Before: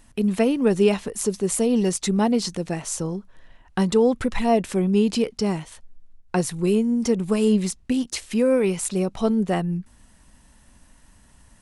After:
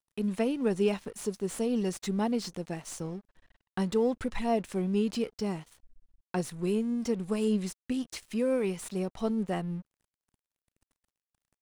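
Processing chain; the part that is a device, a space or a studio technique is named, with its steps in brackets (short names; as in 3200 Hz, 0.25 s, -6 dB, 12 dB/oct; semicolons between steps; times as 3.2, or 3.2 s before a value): early transistor amplifier (crossover distortion -45 dBFS; slew limiter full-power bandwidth 230 Hz); gain -8.5 dB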